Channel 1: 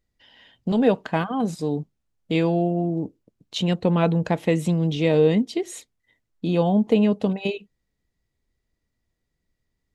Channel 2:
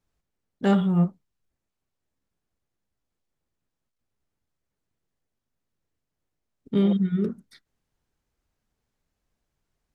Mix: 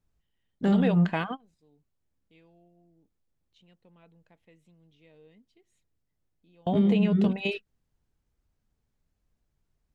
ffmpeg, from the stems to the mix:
-filter_complex "[0:a]equalizer=f=2300:w=0.92:g=7,volume=0.531[s0];[1:a]lowshelf=f=250:g=9.5,volume=0.596,asplit=2[s1][s2];[s2]apad=whole_len=438778[s3];[s0][s3]sidechaingate=range=0.02:threshold=0.00178:ratio=16:detection=peak[s4];[s4][s1]amix=inputs=2:normalize=0,alimiter=limit=0.188:level=0:latency=1:release=135"

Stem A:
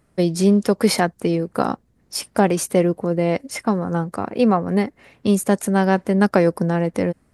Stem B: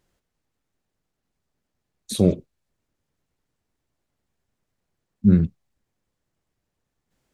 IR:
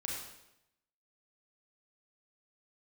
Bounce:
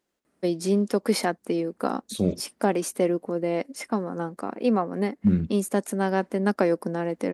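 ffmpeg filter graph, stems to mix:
-filter_complex "[0:a]adelay=250,volume=0.447[s0];[1:a]asubboost=boost=7.5:cutoff=130,volume=0.531[s1];[s0][s1]amix=inputs=2:normalize=0,highpass=42,lowshelf=f=170:t=q:w=1.5:g=-11.5"

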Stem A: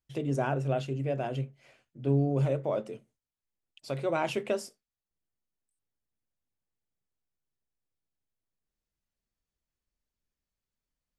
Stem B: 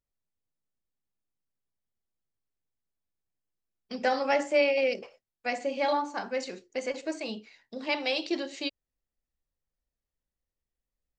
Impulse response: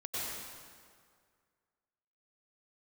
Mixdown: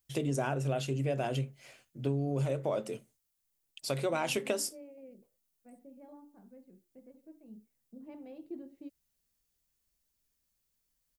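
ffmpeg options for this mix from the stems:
-filter_complex "[0:a]acompressor=threshold=0.0316:ratio=6,crystalizer=i=2.5:c=0,volume=1.26[s0];[1:a]bandpass=f=190:t=q:w=1.5:csg=0,aemphasis=mode=reproduction:type=bsi,adelay=200,volume=0.376,afade=t=in:st=7.51:d=0.67:silence=0.421697[s1];[s0][s1]amix=inputs=2:normalize=0"

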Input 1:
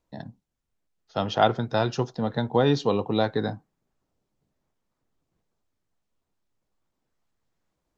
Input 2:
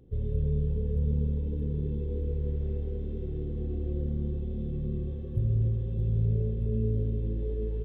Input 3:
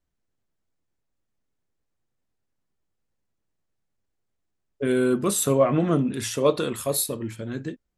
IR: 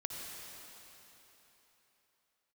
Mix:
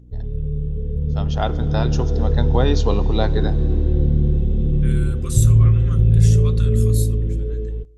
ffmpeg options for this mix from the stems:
-filter_complex "[0:a]volume=0.266,asplit=2[s0][s1];[s1]volume=0.2[s2];[1:a]lowshelf=f=80:g=8.5,aecho=1:1:6.5:0.3,aeval=exprs='val(0)+0.00708*(sin(2*PI*60*n/s)+sin(2*PI*2*60*n/s)/2+sin(2*PI*3*60*n/s)/3+sin(2*PI*4*60*n/s)/4+sin(2*PI*5*60*n/s)/5)':c=same,volume=0.841,asplit=2[s3][s4];[s4]volume=0.0794[s5];[2:a]highpass=f=1200:w=0.5412,highpass=f=1200:w=1.3066,volume=0.119[s6];[3:a]atrim=start_sample=2205[s7];[s2][s5]amix=inputs=2:normalize=0[s8];[s8][s7]afir=irnorm=-1:irlink=0[s9];[s0][s3][s6][s9]amix=inputs=4:normalize=0,equalizer=f=6700:w=1.6:g=7,dynaudnorm=f=630:g=5:m=5.01"

